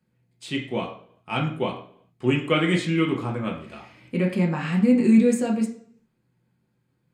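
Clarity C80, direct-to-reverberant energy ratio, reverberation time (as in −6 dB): 12.0 dB, −1.5 dB, 0.60 s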